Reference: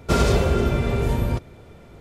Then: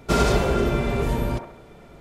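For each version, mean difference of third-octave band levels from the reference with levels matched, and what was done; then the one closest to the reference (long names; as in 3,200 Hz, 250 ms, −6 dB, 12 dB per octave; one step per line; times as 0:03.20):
1.5 dB: parametric band 87 Hz −13 dB 0.47 octaves
notch filter 500 Hz, Q 12
delay with a band-pass on its return 69 ms, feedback 44%, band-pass 850 Hz, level −4 dB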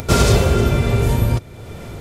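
4.0 dB: parametric band 110 Hz +6 dB 0.53 octaves
in parallel at +2.5 dB: upward compression, threshold −20 dBFS
on the sum: high-shelf EQ 4,300 Hz +8.5 dB
level −4 dB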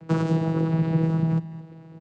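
9.5 dB: downward compressor, threshold −19 dBFS, peak gain reduction 6.5 dB
channel vocoder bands 8, saw 162 Hz
on a send: single-tap delay 215 ms −16.5 dB
on the sum: level +4 dB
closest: first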